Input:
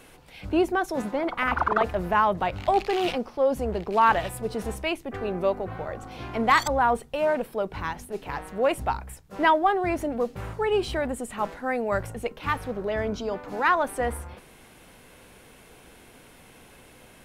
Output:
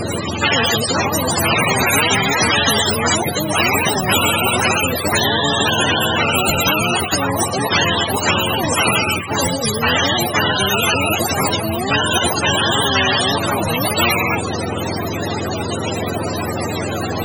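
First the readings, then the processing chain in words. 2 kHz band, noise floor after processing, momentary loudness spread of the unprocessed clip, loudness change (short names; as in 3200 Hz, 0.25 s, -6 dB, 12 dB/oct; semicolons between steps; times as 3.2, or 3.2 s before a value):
+13.0 dB, -23 dBFS, 12 LU, +10.0 dB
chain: spectrum mirrored in octaves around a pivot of 410 Hz; maximiser +10.5 dB; spectral compressor 10:1; gain -1 dB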